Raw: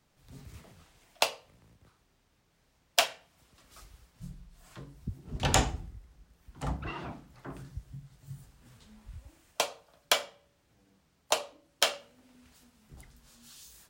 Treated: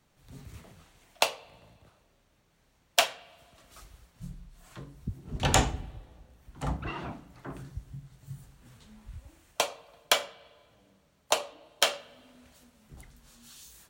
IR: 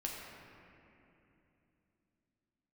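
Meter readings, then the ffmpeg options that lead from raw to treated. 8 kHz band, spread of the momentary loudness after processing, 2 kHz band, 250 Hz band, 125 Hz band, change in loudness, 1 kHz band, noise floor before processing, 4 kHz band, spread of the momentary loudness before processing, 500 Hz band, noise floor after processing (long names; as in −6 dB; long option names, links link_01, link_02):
+1.5 dB, 22 LU, +2.0 dB, +2.0 dB, +2.0 dB, +1.5 dB, +2.0 dB, −71 dBFS, +1.5 dB, 22 LU, +2.0 dB, −68 dBFS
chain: -filter_complex "[0:a]bandreject=frequency=5000:width=16,asplit=2[link_01][link_02];[1:a]atrim=start_sample=2205,asetrate=79380,aresample=44100,lowpass=4200[link_03];[link_02][link_03]afir=irnorm=-1:irlink=0,volume=-14dB[link_04];[link_01][link_04]amix=inputs=2:normalize=0,volume=1.5dB"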